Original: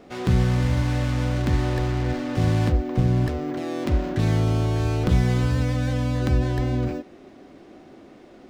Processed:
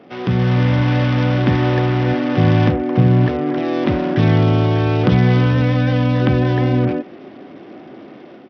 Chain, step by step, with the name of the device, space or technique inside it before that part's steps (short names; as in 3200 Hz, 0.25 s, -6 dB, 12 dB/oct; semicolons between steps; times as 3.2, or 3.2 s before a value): Bluetooth headset (HPF 110 Hz 24 dB/oct; AGC gain up to 6 dB; downsampling 8000 Hz; gain +3.5 dB; SBC 64 kbps 44100 Hz)